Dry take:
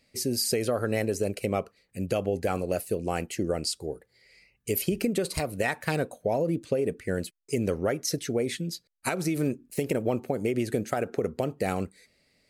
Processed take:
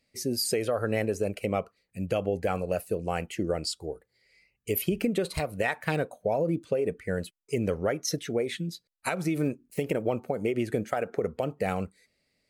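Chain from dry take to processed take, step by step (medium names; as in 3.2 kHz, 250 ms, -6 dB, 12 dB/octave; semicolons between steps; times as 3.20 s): spectral noise reduction 7 dB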